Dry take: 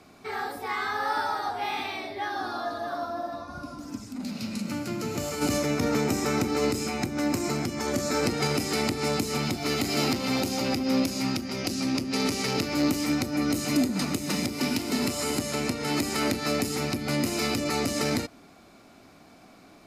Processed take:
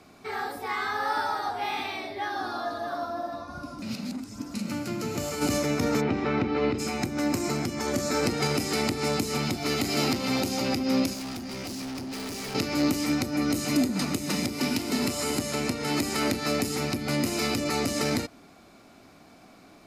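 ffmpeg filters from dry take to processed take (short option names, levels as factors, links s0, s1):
-filter_complex "[0:a]asplit=3[s0][s1][s2];[s0]afade=t=out:st=6:d=0.02[s3];[s1]lowpass=f=3500:w=0.5412,lowpass=f=3500:w=1.3066,afade=t=in:st=6:d=0.02,afade=t=out:st=6.78:d=0.02[s4];[s2]afade=t=in:st=6.78:d=0.02[s5];[s3][s4][s5]amix=inputs=3:normalize=0,asettb=1/sr,asplit=3[s6][s7][s8];[s6]atrim=end=11.134[s9];[s7]atrim=start=11.13:end=12.55,asetpts=PTS-STARTPTS,afade=t=in:d=0.004:c=qsin,afade=t=out:st=1.416:d=0.004:c=qsin,volume=47.3,asoftclip=hard,volume=0.0211[s10];[s8]atrim=start=12.546[s11];[s9][s10]acrossfade=d=0.004:c1=hsin:c2=qsin[s12];[s12][s11]acrossfade=d=0.004:c1=qsin:c2=hsin,asplit=3[s13][s14][s15];[s13]atrim=end=3.822[s16];[s14]atrim=start=3.818:end=4.542,asetpts=PTS-STARTPTS,areverse[s17];[s15]atrim=start=4.538[s18];[s16][s17]acrossfade=d=0.004:c1=hsin:c2=hsin[s19];[s19][s18]acrossfade=d=0.004:c1=hsin:c2=hsin"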